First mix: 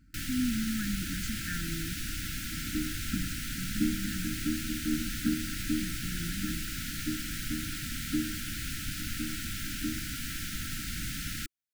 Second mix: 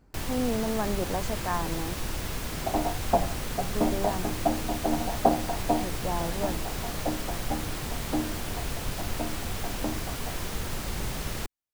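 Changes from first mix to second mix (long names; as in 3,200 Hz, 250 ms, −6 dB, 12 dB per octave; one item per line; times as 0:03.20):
first sound: add low-shelf EQ 150 Hz +7 dB
master: remove linear-phase brick-wall band-stop 330–1,300 Hz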